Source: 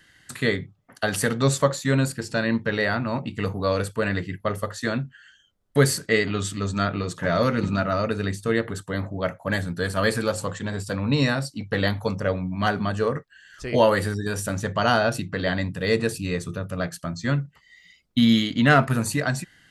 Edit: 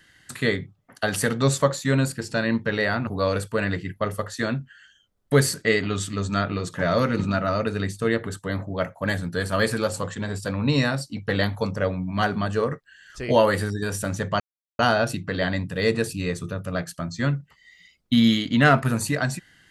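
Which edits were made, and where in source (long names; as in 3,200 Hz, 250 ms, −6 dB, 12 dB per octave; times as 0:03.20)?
0:03.07–0:03.51: remove
0:14.84: splice in silence 0.39 s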